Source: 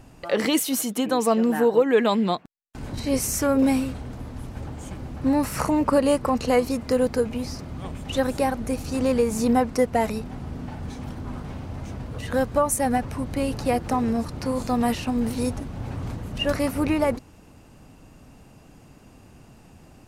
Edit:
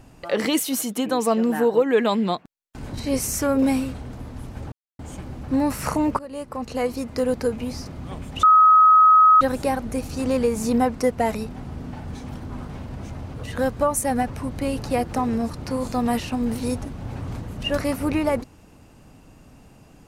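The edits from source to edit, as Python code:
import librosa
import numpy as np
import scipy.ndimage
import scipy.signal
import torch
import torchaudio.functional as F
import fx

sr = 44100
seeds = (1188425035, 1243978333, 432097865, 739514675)

y = fx.edit(x, sr, fx.insert_silence(at_s=4.72, length_s=0.27),
    fx.fade_in_from(start_s=5.92, length_s=1.63, curve='qsin', floor_db=-23.0),
    fx.insert_tone(at_s=8.16, length_s=0.98, hz=1270.0, db=-9.5),
    fx.reverse_span(start_s=11.61, length_s=0.48), tone=tone)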